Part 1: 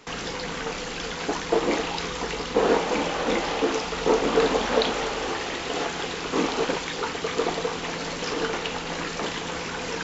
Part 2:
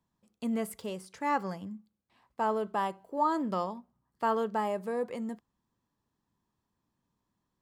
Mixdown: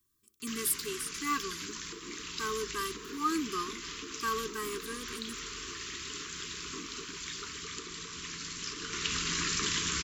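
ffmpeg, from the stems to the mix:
-filter_complex "[0:a]highpass=51,asubboost=boost=2.5:cutoff=130,acompressor=threshold=0.0501:ratio=6,adelay=400,volume=0.668,afade=t=in:st=8.79:d=0.35:silence=0.354813[s0];[1:a]aecho=1:1:2.6:0.79,volume=0.708[s1];[s0][s1]amix=inputs=2:normalize=0,highshelf=f=4500:g=11.5,crystalizer=i=1:c=0,asuperstop=centerf=660:order=12:qfactor=1.1"

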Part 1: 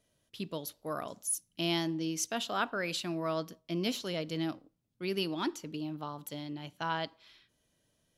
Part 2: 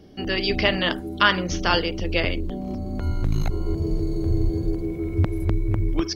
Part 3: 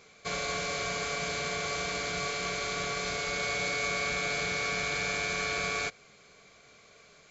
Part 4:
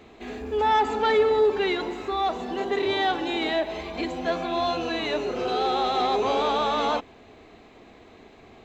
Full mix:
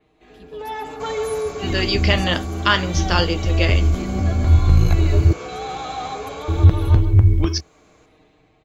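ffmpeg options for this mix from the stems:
-filter_complex "[0:a]acompressor=threshold=0.0158:ratio=6,volume=0.237,asplit=2[s0][s1];[s1]volume=0.316[s2];[1:a]flanger=delay=5.5:depth=5.8:regen=67:speed=0.59:shape=sinusoidal,adelay=1450,volume=1.19,asplit=3[s3][s4][s5];[s3]atrim=end=5.33,asetpts=PTS-STARTPTS,afade=t=out:st=5.326:d=0.004:c=hsin[s6];[s4]atrim=start=5.33:end=6.48,asetpts=PTS-STARTPTS,volume=0[s7];[s5]atrim=start=6.48,asetpts=PTS-STARTPTS,afade=t=in:d=0.004:c=hsin[s8];[s6][s7][s8]concat=n=3:v=0:a=1[s9];[2:a]alimiter=level_in=1.33:limit=0.0631:level=0:latency=1,volume=0.75,equalizer=f=1000:t=o:w=1:g=7,equalizer=f=2000:t=o:w=1:g=-5,equalizer=f=4000:t=o:w=1:g=-8,adelay=750,volume=0.422[s10];[3:a]aecho=1:1:6.5:0.99,volume=0.158,asplit=2[s11][s12];[s12]volume=0.316[s13];[s2][s13]amix=inputs=2:normalize=0,aecho=0:1:141:1[s14];[s0][s9][s10][s11][s14]amix=inputs=5:normalize=0,equalizer=f=73:w=1.2:g=14,dynaudnorm=f=140:g=7:m=2.24,adynamicequalizer=threshold=0.0126:dfrequency=5100:dqfactor=0.7:tfrequency=5100:tqfactor=0.7:attack=5:release=100:ratio=0.375:range=3:mode=boostabove:tftype=highshelf"

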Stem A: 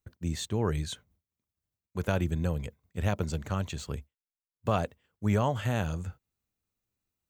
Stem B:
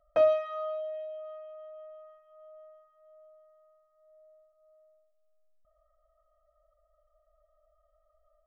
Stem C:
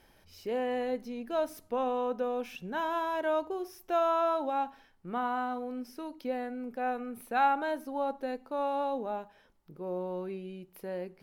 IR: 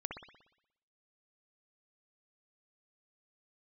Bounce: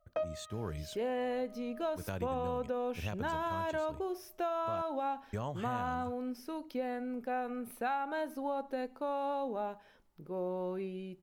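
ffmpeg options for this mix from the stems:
-filter_complex "[0:a]volume=0.316,asplit=3[s0][s1][s2];[s0]atrim=end=4.82,asetpts=PTS-STARTPTS,afade=t=out:st=4.816:d=0.004:c=hsin[s3];[s1]atrim=start=4.82:end=5.33,asetpts=PTS-STARTPTS,volume=0[s4];[s2]atrim=start=5.33,asetpts=PTS-STARTPTS,afade=t=in:d=0.004:c=hsin[s5];[s3][s4][s5]concat=n=3:v=0:a=1,asplit=2[s6][s7];[1:a]volume=0.668[s8];[2:a]adelay=500,volume=1[s9];[s7]apad=whole_len=373307[s10];[s8][s10]sidechaincompress=threshold=0.00224:ratio=4:attack=16:release=720[s11];[s6][s11][s9]amix=inputs=3:normalize=0,acompressor=threshold=0.0282:ratio=10"

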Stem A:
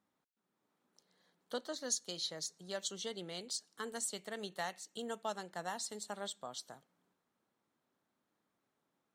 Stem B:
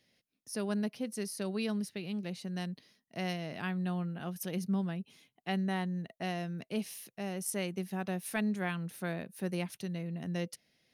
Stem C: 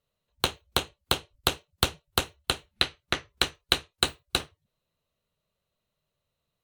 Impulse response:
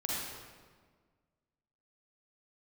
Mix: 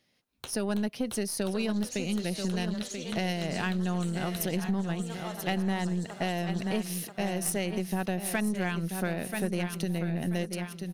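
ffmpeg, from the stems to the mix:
-filter_complex "[0:a]volume=0.596,asplit=3[s0][s1][s2];[s1]volume=0.376[s3];[s2]volume=0.668[s4];[1:a]dynaudnorm=f=140:g=7:m=3.16,volume=1,asplit=2[s5][s6];[s6]volume=0.335[s7];[2:a]volume=0.251[s8];[s0][s8]amix=inputs=2:normalize=0,alimiter=limit=0.0794:level=0:latency=1:release=283,volume=1[s9];[3:a]atrim=start_sample=2205[s10];[s3][s10]afir=irnorm=-1:irlink=0[s11];[s4][s7]amix=inputs=2:normalize=0,aecho=0:1:984|1968|2952|3936|4920:1|0.37|0.137|0.0507|0.0187[s12];[s5][s9][s11][s12]amix=inputs=4:normalize=0,aeval=exprs='0.282*(cos(1*acos(clip(val(0)/0.282,-1,1)))-cos(1*PI/2))+0.0178*(cos(6*acos(clip(val(0)/0.282,-1,1)))-cos(6*PI/2))':c=same,acompressor=threshold=0.0447:ratio=4"

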